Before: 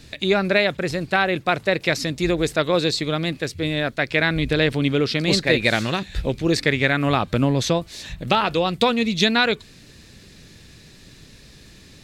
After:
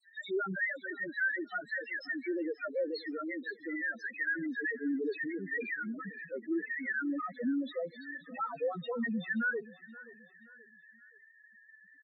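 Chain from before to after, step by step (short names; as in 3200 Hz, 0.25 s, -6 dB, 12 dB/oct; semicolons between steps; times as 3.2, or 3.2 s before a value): self-modulated delay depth 0.2 ms; HPF 200 Hz 24 dB/oct; bell 1800 Hz +13.5 dB 0.72 oct; hard clip -19.5 dBFS, distortion -4 dB; dispersion lows, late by 65 ms, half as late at 3000 Hz; loudest bins only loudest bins 2; on a send: feedback echo 0.527 s, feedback 39%, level -19 dB; on the sum: gain -6 dB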